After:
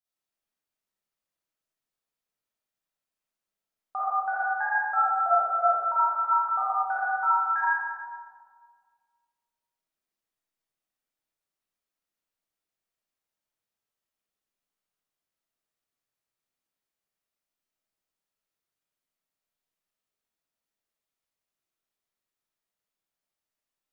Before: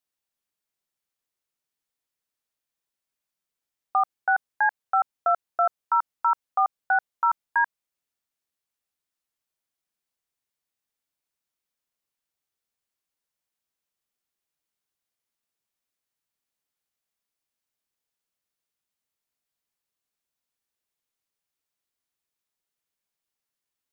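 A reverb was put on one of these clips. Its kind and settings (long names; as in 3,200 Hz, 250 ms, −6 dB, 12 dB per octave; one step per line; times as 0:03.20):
comb and all-pass reverb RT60 1.9 s, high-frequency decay 0.35×, pre-delay 5 ms, DRR −9.5 dB
level −10.5 dB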